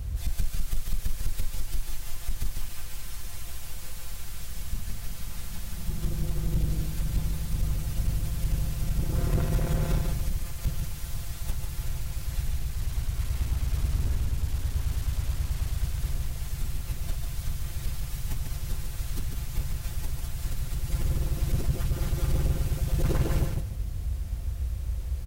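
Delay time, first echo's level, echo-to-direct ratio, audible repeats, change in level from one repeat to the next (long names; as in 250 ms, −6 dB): 146 ms, −4.5 dB, −4.5 dB, 2, −12.5 dB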